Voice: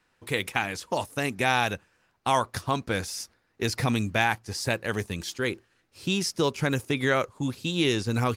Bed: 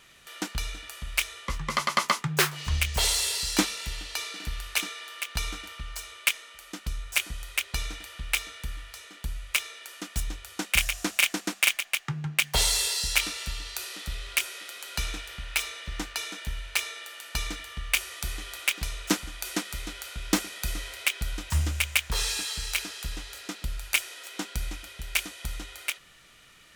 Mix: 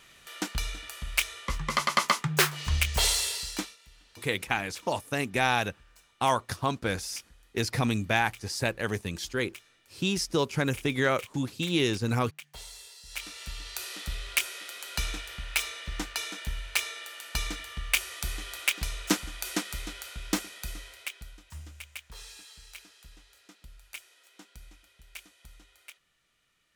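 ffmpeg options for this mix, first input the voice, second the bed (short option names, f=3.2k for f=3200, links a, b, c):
-filter_complex "[0:a]adelay=3950,volume=-1.5dB[a];[1:a]volume=21dB,afade=t=out:st=3.07:d=0.7:silence=0.0841395,afade=t=in:st=13.04:d=0.89:silence=0.0891251,afade=t=out:st=19.65:d=1.74:silence=0.133352[b];[a][b]amix=inputs=2:normalize=0"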